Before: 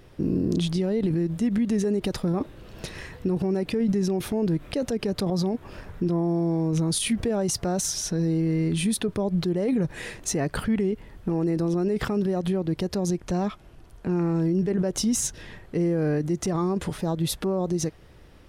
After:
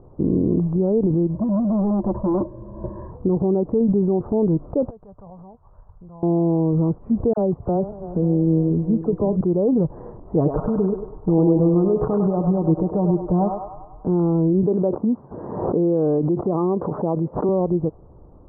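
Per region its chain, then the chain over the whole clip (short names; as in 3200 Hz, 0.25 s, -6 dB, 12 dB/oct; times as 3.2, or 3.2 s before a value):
1.34–3.11 ripple EQ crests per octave 1.3, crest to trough 17 dB + hard clip -23 dBFS
4.9–6.23 passive tone stack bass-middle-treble 10-0-10 + tube stage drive 33 dB, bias 0.55
7.33–9.41 regenerating reverse delay 0.274 s, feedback 56%, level -12.5 dB + bell 1200 Hz -2.5 dB 1.4 oct + dispersion lows, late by 44 ms, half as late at 1200 Hz
10.35–14.07 comb 6.5 ms, depth 54% + narrowing echo 0.1 s, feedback 62%, band-pass 1000 Hz, level -3 dB
14.63–17.49 HPF 190 Hz + backwards sustainer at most 26 dB/s
whole clip: steep low-pass 1100 Hz 48 dB/oct; dynamic EQ 480 Hz, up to +3 dB, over -38 dBFS, Q 1.6; gain +4.5 dB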